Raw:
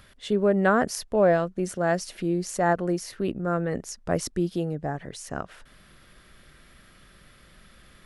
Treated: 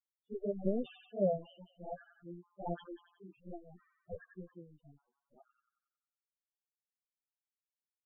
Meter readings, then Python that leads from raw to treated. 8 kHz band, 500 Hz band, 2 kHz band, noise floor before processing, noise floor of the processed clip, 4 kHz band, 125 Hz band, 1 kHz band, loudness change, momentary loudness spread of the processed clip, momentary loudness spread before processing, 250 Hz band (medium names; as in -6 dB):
under -40 dB, -14.5 dB, -30.0 dB, -55 dBFS, under -85 dBFS, -22.0 dB, -16.5 dB, -20.0 dB, -14.0 dB, 20 LU, 13 LU, -15.5 dB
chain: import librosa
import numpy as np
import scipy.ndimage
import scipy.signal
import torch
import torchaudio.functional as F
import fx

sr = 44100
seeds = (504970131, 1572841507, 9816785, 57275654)

y = scipy.signal.sosfilt(scipy.signal.butter(2, 6700.0, 'lowpass', fs=sr, output='sos'), x)
y = fx.power_curve(y, sr, exponent=3.0)
y = fx.env_flanger(y, sr, rest_ms=9.0, full_db=-28.5)
y = fx.echo_wet_highpass(y, sr, ms=91, feedback_pct=57, hz=1800.0, wet_db=-5.0)
y = fx.spec_topn(y, sr, count=4)
y = F.gain(torch.from_numpy(y), 5.5).numpy()